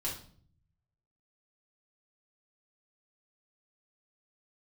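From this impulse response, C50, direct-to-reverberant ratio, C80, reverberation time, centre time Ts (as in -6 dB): 6.5 dB, -6.0 dB, 11.5 dB, 0.50 s, 29 ms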